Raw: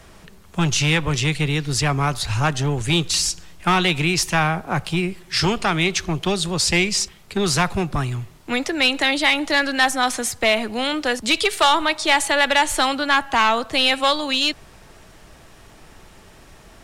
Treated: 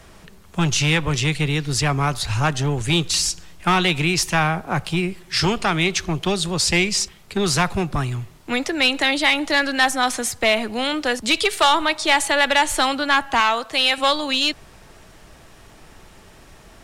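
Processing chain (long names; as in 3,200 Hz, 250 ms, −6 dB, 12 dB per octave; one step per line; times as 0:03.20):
0:13.40–0:13.98: low-shelf EQ 320 Hz −11 dB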